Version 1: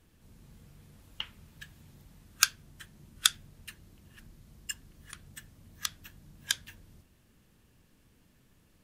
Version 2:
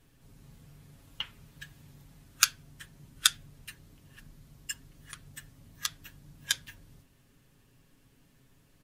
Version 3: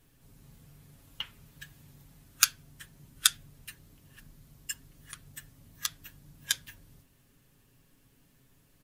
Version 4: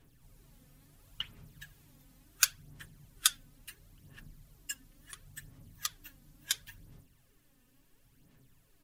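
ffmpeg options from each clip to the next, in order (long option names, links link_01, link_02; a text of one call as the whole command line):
ffmpeg -i in.wav -af "aecho=1:1:7.3:0.55" out.wav
ffmpeg -i in.wav -af "highshelf=frequency=11000:gain=9,volume=-1.5dB" out.wav
ffmpeg -i in.wav -af "aphaser=in_gain=1:out_gain=1:delay=4:decay=0.54:speed=0.72:type=sinusoidal,volume=-4.5dB" out.wav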